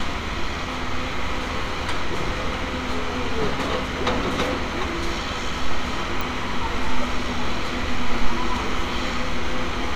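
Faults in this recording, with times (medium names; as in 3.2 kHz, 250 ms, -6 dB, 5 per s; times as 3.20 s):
6.21 s: pop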